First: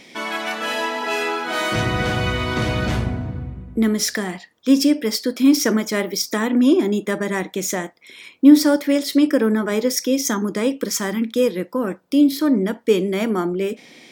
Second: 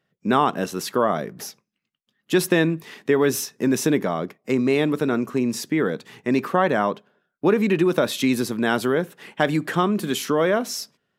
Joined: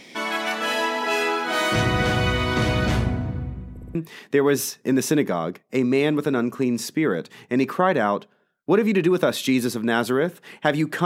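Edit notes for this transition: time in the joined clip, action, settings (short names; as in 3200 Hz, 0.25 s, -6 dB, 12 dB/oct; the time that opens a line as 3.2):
first
3.71 stutter in place 0.06 s, 4 plays
3.95 switch to second from 2.7 s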